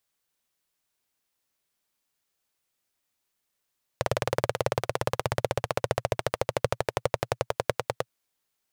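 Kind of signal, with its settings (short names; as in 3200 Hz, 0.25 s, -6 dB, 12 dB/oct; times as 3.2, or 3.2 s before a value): single-cylinder engine model, changing speed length 4.08 s, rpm 2300, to 1100, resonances 120/520 Hz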